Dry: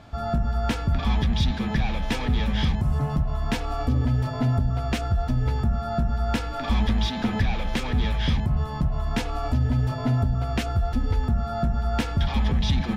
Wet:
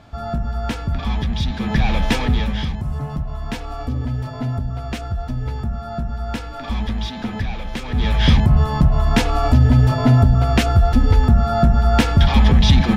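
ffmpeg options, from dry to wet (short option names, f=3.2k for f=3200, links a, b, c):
-af "volume=20dB,afade=t=in:st=1.51:d=0.48:silence=0.398107,afade=t=out:st=1.99:d=0.67:silence=0.316228,afade=t=in:st=7.87:d=0.42:silence=0.281838"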